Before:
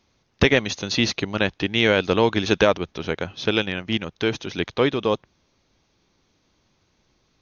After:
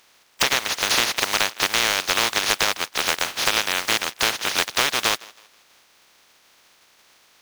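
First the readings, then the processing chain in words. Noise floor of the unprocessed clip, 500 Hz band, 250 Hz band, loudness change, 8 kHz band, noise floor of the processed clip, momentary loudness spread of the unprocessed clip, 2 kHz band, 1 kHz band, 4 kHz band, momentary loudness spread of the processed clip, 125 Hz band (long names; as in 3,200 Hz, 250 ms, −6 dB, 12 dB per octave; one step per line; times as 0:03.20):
−68 dBFS, −9.5 dB, −13.5 dB, +1.5 dB, can't be measured, −58 dBFS, 9 LU, +3.0 dB, +4.0 dB, +5.5 dB, 3 LU, −14.5 dB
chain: compressing power law on the bin magnitudes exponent 0.16
downward compressor 10 to 1, threshold −25 dBFS, peak gain reduction 14 dB
feedback echo with a high-pass in the loop 161 ms, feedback 35%, high-pass 230 Hz, level −24 dB
mid-hump overdrive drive 13 dB, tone 4,400 Hz, clips at −8.5 dBFS
level +5 dB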